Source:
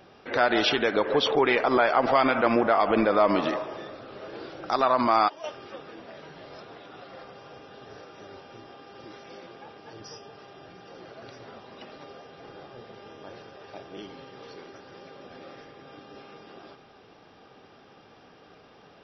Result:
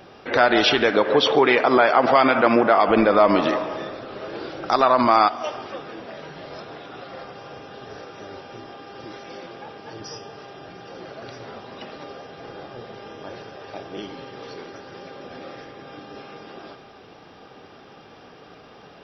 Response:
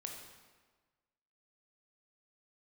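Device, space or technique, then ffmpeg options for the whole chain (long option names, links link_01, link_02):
compressed reverb return: -filter_complex "[0:a]asplit=2[link_01][link_02];[1:a]atrim=start_sample=2205[link_03];[link_02][link_03]afir=irnorm=-1:irlink=0,acompressor=threshold=-28dB:ratio=6,volume=-3.5dB[link_04];[link_01][link_04]amix=inputs=2:normalize=0,asettb=1/sr,asplit=3[link_05][link_06][link_07];[link_05]atrim=end=0.914[link_08];[link_06]atrim=start=0.91:end=2.88,asetpts=PTS-STARTPTS,afade=type=in:duration=0.004:curve=qsin,afade=type=out:start_time=1.966:duration=0.004:curve=qsin,highpass=110[link_09];[link_07]atrim=start=2.876[link_10];[link_08][link_09]acrossfade=duration=0.004:curve1=hsin:curve2=qsin[link_11];[link_11][link_10]acrossfade=duration=0.004:curve1=qsin:curve2=hsin,volume=4dB"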